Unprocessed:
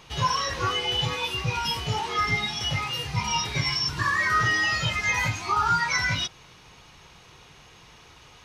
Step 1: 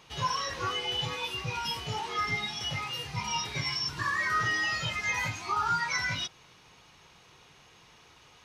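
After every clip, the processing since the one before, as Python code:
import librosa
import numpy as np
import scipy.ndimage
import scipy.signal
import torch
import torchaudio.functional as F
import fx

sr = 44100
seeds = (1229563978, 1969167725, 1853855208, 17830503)

y = fx.low_shelf(x, sr, hz=79.0, db=-9.5)
y = F.gain(torch.from_numpy(y), -5.5).numpy()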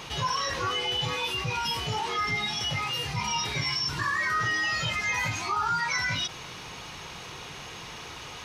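y = fx.env_flatten(x, sr, amount_pct=50)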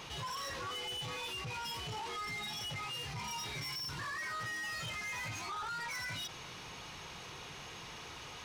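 y = 10.0 ** (-32.0 / 20.0) * np.tanh(x / 10.0 ** (-32.0 / 20.0))
y = F.gain(torch.from_numpy(y), -6.0).numpy()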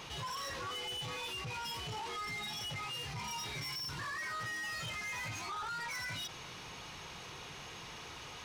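y = x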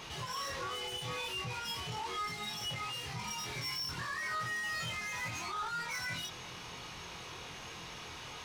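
y = fx.doubler(x, sr, ms=24.0, db=-3.5)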